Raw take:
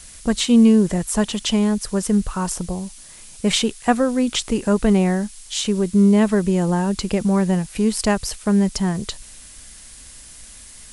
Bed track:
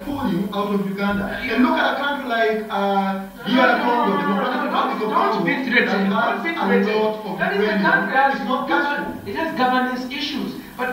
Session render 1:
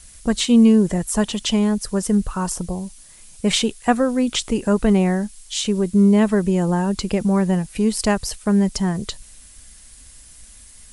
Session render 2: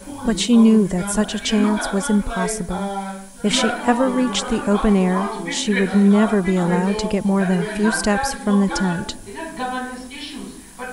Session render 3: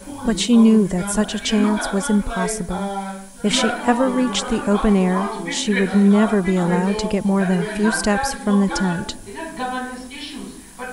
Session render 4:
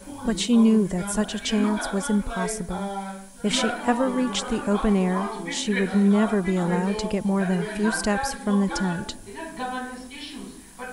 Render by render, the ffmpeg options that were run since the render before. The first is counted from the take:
-af "afftdn=nr=6:nf=-42"
-filter_complex "[1:a]volume=0.422[s0];[0:a][s0]amix=inputs=2:normalize=0"
-af anull
-af "volume=0.562"

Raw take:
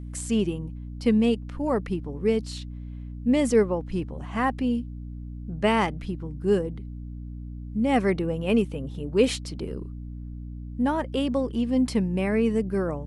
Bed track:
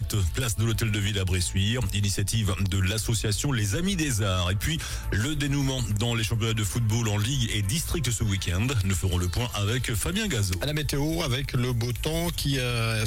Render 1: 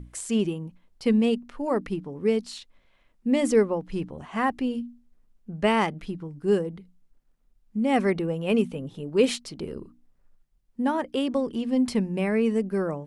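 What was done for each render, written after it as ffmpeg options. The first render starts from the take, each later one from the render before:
-af "bandreject=f=60:t=h:w=6,bandreject=f=120:t=h:w=6,bandreject=f=180:t=h:w=6,bandreject=f=240:t=h:w=6,bandreject=f=300:t=h:w=6"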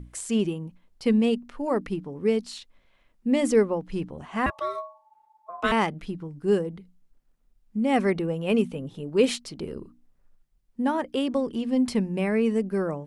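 -filter_complex "[0:a]asettb=1/sr,asplit=3[s0][s1][s2];[s0]atrim=end=4.464[s3];[s1]atrim=start=4.46:end=5.72,asetpts=PTS-STARTPTS,afade=t=in:d=0.004:c=qsin,afade=t=out:st=1.256:d=0.004:c=qsin,aeval=exprs='val(0)*sin(2*PI*870*n/s)':c=same[s4];[s2]atrim=start=5.716[s5];[s3][s4]acrossfade=d=0.004:c1=hsin:c2=qsin[s6];[s6][s5]acrossfade=d=0.004:c1=qsin:c2=hsin"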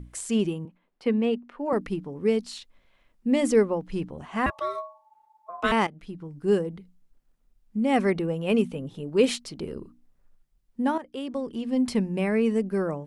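-filter_complex "[0:a]asettb=1/sr,asplit=3[s0][s1][s2];[s0]atrim=end=0.654[s3];[s1]atrim=start=0.65:end=1.73,asetpts=PTS-STARTPTS,afade=t=in:d=0.004:c=qsin,afade=t=out:st=1.076:d=0.004:c=qsin,acrossover=split=200 3100:gain=0.126 1 0.2[s4][s5][s6];[s4][s5][s6]amix=inputs=3:normalize=0[s7];[s2]atrim=start=1.726[s8];[s3][s7]acrossfade=d=0.004:c1=hsin:c2=qsin[s9];[s9][s8]acrossfade=d=0.004:c1=qsin:c2=hsin,asplit=3[s10][s11][s12];[s10]atrim=end=5.87,asetpts=PTS-STARTPTS,afade=t=out:st=5.866:d=0.004:c=hsin:silence=0.211349[s13];[s11]atrim=start=5.87:end=10.98,asetpts=PTS-STARTPTS,afade=t=in:d=0.56:silence=0.211349,afade=t=out:st=5.106:d=0.004:c=hsin:silence=0.237137[s14];[s12]atrim=start=10.98,asetpts=PTS-STARTPTS,afade=t=in:d=0.97:silence=0.237137[s15];[s13][s14][s15]concat=n=3:v=0:a=1"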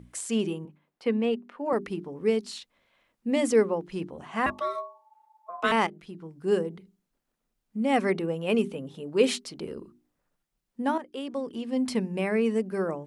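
-af "highpass=f=200:p=1,bandreject=f=50:t=h:w=6,bandreject=f=100:t=h:w=6,bandreject=f=150:t=h:w=6,bandreject=f=200:t=h:w=6,bandreject=f=250:t=h:w=6,bandreject=f=300:t=h:w=6,bandreject=f=350:t=h:w=6,bandreject=f=400:t=h:w=6"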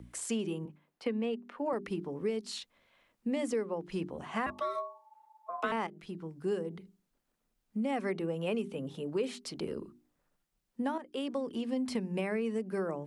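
-filter_complex "[0:a]acrossover=split=200|610|1800[s0][s1][s2][s3];[s3]alimiter=level_in=1.88:limit=0.0631:level=0:latency=1:release=22,volume=0.531[s4];[s0][s1][s2][s4]amix=inputs=4:normalize=0,acompressor=threshold=0.0316:ratio=6"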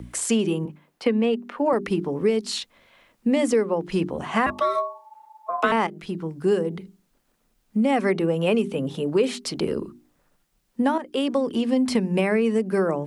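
-af "volume=3.98"

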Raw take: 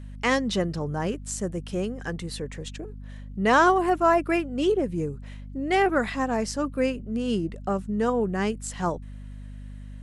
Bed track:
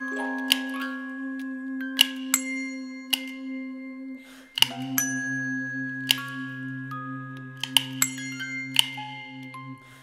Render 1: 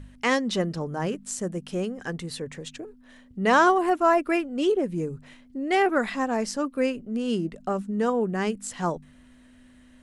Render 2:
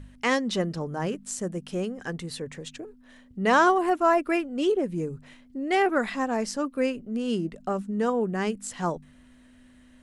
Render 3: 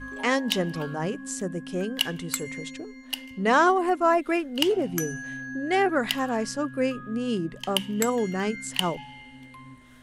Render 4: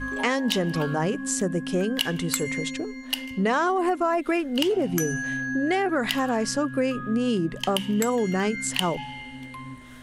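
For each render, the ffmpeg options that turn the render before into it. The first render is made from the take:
-af "bandreject=f=50:t=h:w=4,bandreject=f=100:t=h:w=4,bandreject=f=150:t=h:w=4,bandreject=f=200:t=h:w=4"
-af "volume=0.891"
-filter_complex "[1:a]volume=0.447[s0];[0:a][s0]amix=inputs=2:normalize=0"
-filter_complex "[0:a]asplit=2[s0][s1];[s1]alimiter=limit=0.106:level=0:latency=1:release=16,volume=1.26[s2];[s0][s2]amix=inputs=2:normalize=0,acompressor=threshold=0.1:ratio=6"

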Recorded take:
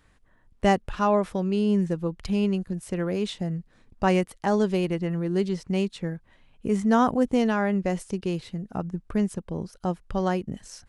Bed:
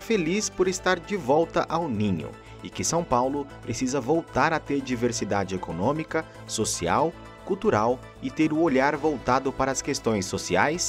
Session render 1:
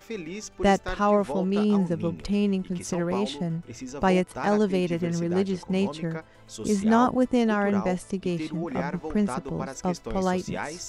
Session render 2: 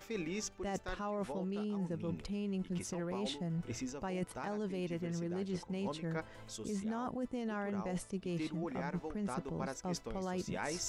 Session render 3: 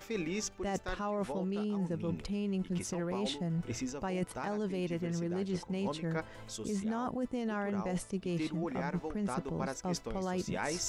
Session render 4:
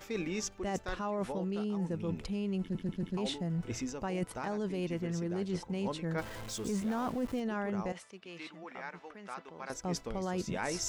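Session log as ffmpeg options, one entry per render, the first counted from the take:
-filter_complex "[1:a]volume=0.282[s0];[0:a][s0]amix=inputs=2:normalize=0"
-af "alimiter=limit=0.133:level=0:latency=1:release=33,areverse,acompressor=threshold=0.0178:ratio=12,areverse"
-af "volume=1.5"
-filter_complex "[0:a]asettb=1/sr,asplit=3[s0][s1][s2];[s0]atrim=end=6.184[s3];[s1]atrim=start=6.18:end=7.4,asetpts=PTS-STARTPTS,afade=t=in:d=0.004:c=qsin,afade=t=out:st=1.216:d=0.004:c=qsin,aeval=exprs='val(0)+0.5*0.0075*sgn(val(0))':c=same[s4];[s2]atrim=start=7.396[s5];[s3][s4]acrossfade=d=0.004:c1=hsin:c2=qsin[s6];[s6][s5]acrossfade=d=0.004:c1=qsin:c2=hsin,asettb=1/sr,asplit=3[s7][s8][s9];[s7]atrim=end=7.924[s10];[s8]atrim=start=7.92:end=9.7,asetpts=PTS-STARTPTS,afade=t=in:d=0.004:c=qsin,afade=t=out:st=1.776:d=0.004:c=qsin,bandpass=f=2100:t=q:w=0.73[s11];[s9]atrim=start=9.696[s12];[s10][s11]acrossfade=d=0.004:c1=hsin:c2=qsin[s13];[s13][s12]acrossfade=d=0.004:c1=qsin:c2=hsin,asplit=5[s14][s15][s16][s17][s18];[s14]atrim=end=2.752[s19];[s15]atrim=start=2.608:end=2.752[s20];[s16]atrim=start=2.608:end=2.752[s21];[s17]atrim=start=2.608:end=2.752[s22];[s18]atrim=start=3.168[s23];[s19][s20]acrossfade=d=0.004:c1=hsin:c2=hsin[s24];[s24][s21]acrossfade=d=0.004:c1=hsin:c2=hsin[s25];[s25][s22]acrossfade=d=0.004:c1=hsin:c2=hsin[s26];[s26][s23]acrossfade=d=0.004:c1=hsin:c2=hsin"

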